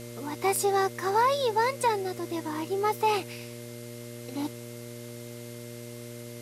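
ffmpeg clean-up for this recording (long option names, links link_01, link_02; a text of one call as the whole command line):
ffmpeg -i in.wav -af "adeclick=threshold=4,bandreject=frequency=119:width_type=h:width=4,bandreject=frequency=238:width_type=h:width=4,bandreject=frequency=357:width_type=h:width=4,bandreject=frequency=476:width_type=h:width=4,bandreject=frequency=595:width_type=h:width=4,bandreject=frequency=2100:width=30,afwtdn=0.004" out.wav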